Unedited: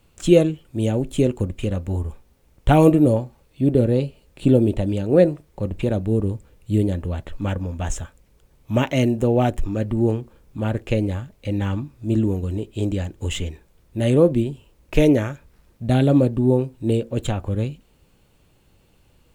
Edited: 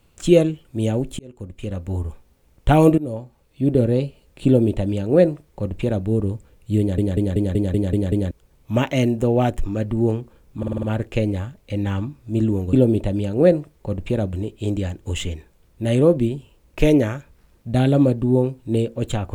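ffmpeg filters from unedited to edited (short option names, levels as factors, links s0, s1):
-filter_complex "[0:a]asplit=18[s0][s1][s2][s3][s4][s5][s6][s7][s8][s9][s10][s11][s12][s13][s14][s15][s16][s17];[s0]atrim=end=1.19,asetpts=PTS-STARTPTS,afade=t=out:st=1.186:d=0.004:c=hsin[s18];[s1]atrim=start=1.19:end=2.98,asetpts=PTS-STARTPTS,afade=t=in:d=0.83,afade=t=out:st=1.786:d=0.004:c=hsin:silence=0.149624[s19];[s2]atrim=start=2.98:end=6.982,asetpts=PTS-STARTPTS,afade=t=in:d=0.74:silence=0.149624[s20];[s3]atrim=start=6.788:end=6.982[s21];[s4]atrim=start=6.788:end=6.982[s22];[s5]atrim=start=6.788:end=6.982[s23];[s6]atrim=start=6.788:end=6.982[s24];[s7]atrim=start=6.788:end=6.982[s25];[s8]atrim=start=6.788:end=6.982[s26];[s9]atrim=start=6.788:end=6.982[s27];[s10]atrim=start=8.308:end=10.632[s28];[s11]atrim=start=10.578:end=10.632[s29];[s12]atrim=start=10.578:end=10.632[s30];[s13]atrim=start=10.578:end=10.632[s31];[s14]atrim=start=10.578:end=10.632[s32];[s15]atrim=start=10.578:end=12.482[s33];[s16]atrim=start=4.458:end=6.062[s34];[s17]atrim=start=12.478[s35];[s18][s19][s20]concat=n=3:v=0:a=1[s36];[s36][s21]acrossfade=d=0.004:c1=hsin:c2=hsin[s37];[s37][s22]acrossfade=d=0.004:c1=hsin:c2=hsin[s38];[s38][s23]acrossfade=d=0.004:c1=hsin:c2=hsin[s39];[s39][s24]acrossfade=d=0.004:c1=hsin:c2=hsin[s40];[s40][s25]acrossfade=d=0.004:c1=hsin:c2=hsin[s41];[s41][s26]acrossfade=d=0.004:c1=hsin:c2=hsin[s42];[s42][s27]acrossfade=d=0.004:c1=hsin:c2=hsin[s43];[s43][s28]acrossfade=d=0.004:c1=hsin:c2=hsin[s44];[s44][s29]acrossfade=d=0.004:c1=hsin:c2=hsin[s45];[s45][s30]acrossfade=d=0.004:c1=hsin:c2=hsin[s46];[s46][s31]acrossfade=d=0.004:c1=hsin:c2=hsin[s47];[s47][s32]acrossfade=d=0.004:c1=hsin:c2=hsin[s48];[s48][s33]acrossfade=d=0.004:c1=hsin:c2=hsin[s49];[s49][s34]acrossfade=d=0.004:c1=hsin:c2=hsin[s50];[s50][s35]acrossfade=d=0.004:c1=hsin:c2=hsin"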